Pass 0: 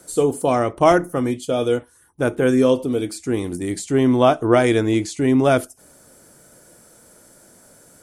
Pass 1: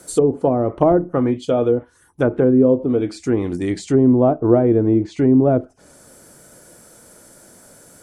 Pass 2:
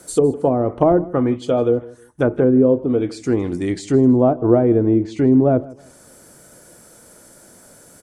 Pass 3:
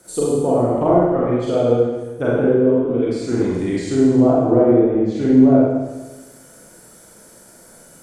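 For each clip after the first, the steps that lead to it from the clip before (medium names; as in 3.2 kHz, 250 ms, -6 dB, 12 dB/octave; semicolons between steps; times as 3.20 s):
low-pass that closes with the level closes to 530 Hz, closed at -14 dBFS; trim +3.5 dB
feedback delay 158 ms, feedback 28%, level -21 dB
reverberation RT60 1.2 s, pre-delay 34 ms, DRR -7 dB; trim -6.5 dB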